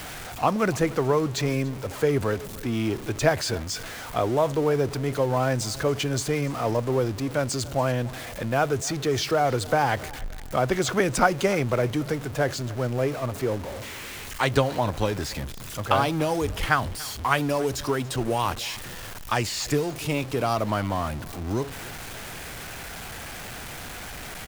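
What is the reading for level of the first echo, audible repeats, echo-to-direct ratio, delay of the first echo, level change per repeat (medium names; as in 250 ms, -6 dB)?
-21.0 dB, 2, -20.5 dB, 287 ms, -9.0 dB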